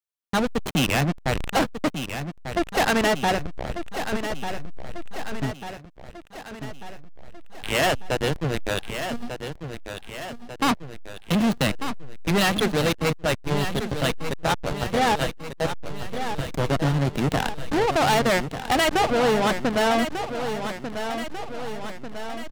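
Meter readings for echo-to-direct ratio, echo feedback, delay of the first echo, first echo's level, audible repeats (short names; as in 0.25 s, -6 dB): -7.5 dB, 56%, 1.194 s, -9.0 dB, 6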